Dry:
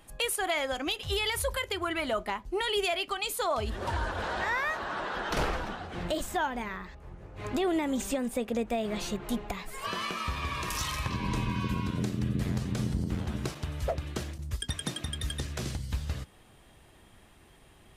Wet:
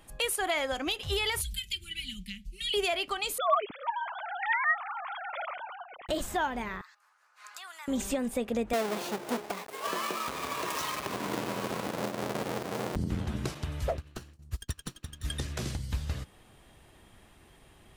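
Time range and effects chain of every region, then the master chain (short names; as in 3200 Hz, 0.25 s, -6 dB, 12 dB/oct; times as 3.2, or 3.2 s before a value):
1.41–2.74 elliptic band-stop 190–2700 Hz, stop band 60 dB + comb 5.1 ms, depth 70%
3.38–6.09 sine-wave speech + comb 0.9 ms, depth 44%
6.81–7.88 HPF 1300 Hz 24 dB/oct + band shelf 2600 Hz -8.5 dB 1.2 oct
8.73–12.96 half-waves squared off + HPF 440 Hz + tilt shelf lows +5 dB, about 710 Hz
13.97–15.25 minimum comb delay 0.7 ms + upward expander 2.5:1, over -46 dBFS
whole clip: dry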